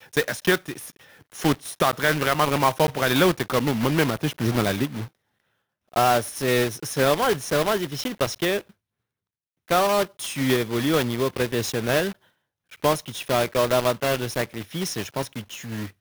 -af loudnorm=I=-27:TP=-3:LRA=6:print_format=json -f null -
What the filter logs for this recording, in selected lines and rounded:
"input_i" : "-23.8",
"input_tp" : "-7.5",
"input_lra" : "3.4",
"input_thresh" : "-34.2",